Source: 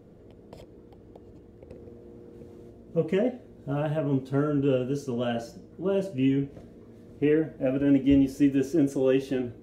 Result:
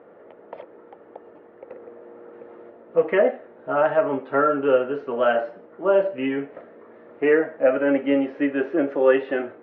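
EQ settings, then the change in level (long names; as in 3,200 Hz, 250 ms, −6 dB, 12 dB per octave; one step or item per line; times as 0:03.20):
high-frequency loss of the air 150 metres
loudspeaker in its box 470–2,800 Hz, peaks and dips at 570 Hz +6 dB, 880 Hz +7 dB, 1,300 Hz +10 dB, 1,800 Hz +7 dB
+8.0 dB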